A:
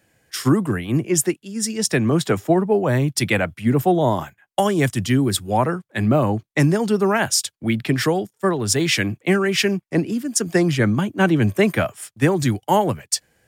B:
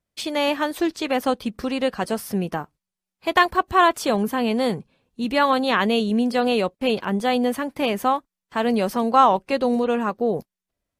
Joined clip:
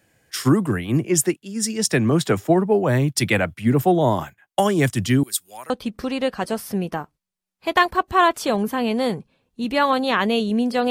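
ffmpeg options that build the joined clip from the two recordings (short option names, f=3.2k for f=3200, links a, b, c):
-filter_complex "[0:a]asettb=1/sr,asplit=3[a][b][c];[a]atrim=end=5.234[d];[b]atrim=start=5.23:end=5.7,asetpts=PTS-STARTPTS,afade=t=in:d=0.004:c=qsin,afade=t=out:st=0.466:d=0.004:c=qsin,aderivative[e];[c]atrim=start=5.696[f];[d][e]acrossfade=d=0.004:c1=hsin:c2=qsin[g];[g][f]acrossfade=d=0.004:c1=qsin:c2=hsin,apad=whole_dur=10.9,atrim=end=10.9,atrim=end=5.702[h];[1:a]atrim=start=1.298:end=6.5[i];[h][i]acrossfade=d=0.004:c1=hsin:c2=hsin"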